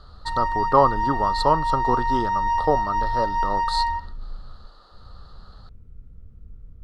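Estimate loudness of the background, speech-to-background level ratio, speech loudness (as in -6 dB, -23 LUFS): -24.5 LUFS, -0.5 dB, -25.0 LUFS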